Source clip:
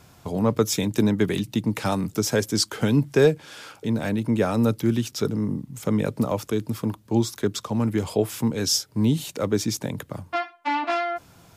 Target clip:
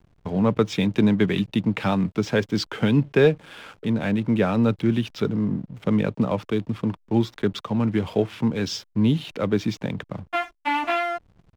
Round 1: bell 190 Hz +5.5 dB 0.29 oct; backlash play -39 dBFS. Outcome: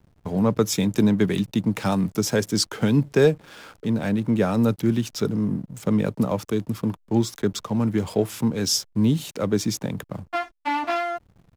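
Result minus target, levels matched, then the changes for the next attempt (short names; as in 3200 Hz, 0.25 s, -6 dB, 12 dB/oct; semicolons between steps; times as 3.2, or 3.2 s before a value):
4000 Hz band +2.5 dB
add first: synth low-pass 3000 Hz, resonance Q 1.7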